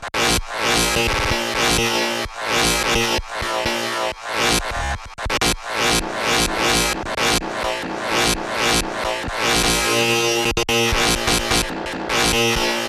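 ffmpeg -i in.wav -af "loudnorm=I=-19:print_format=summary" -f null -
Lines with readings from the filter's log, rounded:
Input Integrated:    -18.3 LUFS
Input True Peak:      -5.8 dBTP
Input LRA:             2.2 LU
Input Threshold:     -28.3 LUFS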